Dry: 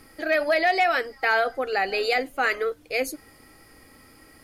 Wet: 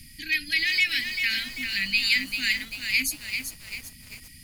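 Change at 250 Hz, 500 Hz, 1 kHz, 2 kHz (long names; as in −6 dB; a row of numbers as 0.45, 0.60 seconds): −4.5 dB, below −30 dB, below −25 dB, +0.5 dB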